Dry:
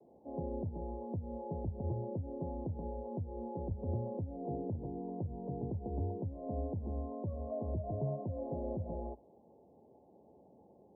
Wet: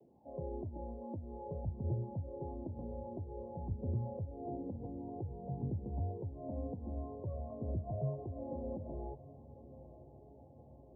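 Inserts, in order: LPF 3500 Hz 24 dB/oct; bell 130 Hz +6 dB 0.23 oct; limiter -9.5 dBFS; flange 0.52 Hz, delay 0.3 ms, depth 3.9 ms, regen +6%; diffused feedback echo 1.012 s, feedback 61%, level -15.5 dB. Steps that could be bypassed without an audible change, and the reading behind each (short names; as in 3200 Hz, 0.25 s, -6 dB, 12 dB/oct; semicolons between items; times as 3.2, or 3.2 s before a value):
LPF 3500 Hz: input band ends at 850 Hz; limiter -9.5 dBFS: input peak -24.0 dBFS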